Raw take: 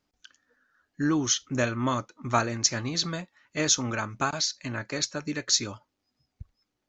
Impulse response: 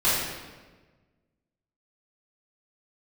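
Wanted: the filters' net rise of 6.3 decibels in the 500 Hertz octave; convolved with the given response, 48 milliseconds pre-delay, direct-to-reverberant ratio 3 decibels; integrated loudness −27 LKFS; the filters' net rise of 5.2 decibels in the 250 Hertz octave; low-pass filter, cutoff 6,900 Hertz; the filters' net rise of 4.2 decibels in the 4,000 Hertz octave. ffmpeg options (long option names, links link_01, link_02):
-filter_complex "[0:a]lowpass=6900,equalizer=frequency=250:width_type=o:gain=4,equalizer=frequency=500:width_type=o:gain=7,equalizer=frequency=4000:width_type=o:gain=6,asplit=2[link_01][link_02];[1:a]atrim=start_sample=2205,adelay=48[link_03];[link_02][link_03]afir=irnorm=-1:irlink=0,volume=-18.5dB[link_04];[link_01][link_04]amix=inputs=2:normalize=0,volume=-4.5dB"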